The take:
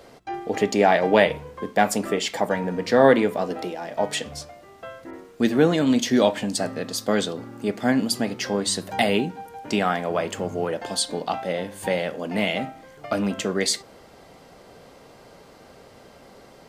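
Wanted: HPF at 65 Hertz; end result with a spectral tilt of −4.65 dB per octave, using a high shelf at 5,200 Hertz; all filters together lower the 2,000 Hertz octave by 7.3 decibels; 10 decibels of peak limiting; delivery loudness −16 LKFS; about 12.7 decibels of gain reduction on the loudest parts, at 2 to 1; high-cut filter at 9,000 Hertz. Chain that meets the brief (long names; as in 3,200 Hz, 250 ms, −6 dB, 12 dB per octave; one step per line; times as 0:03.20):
high-pass filter 65 Hz
low-pass filter 9,000 Hz
parametric band 2,000 Hz −8.5 dB
high-shelf EQ 5,200 Hz −4.5 dB
downward compressor 2 to 1, threshold −36 dBFS
level +21.5 dB
brickwall limiter −5 dBFS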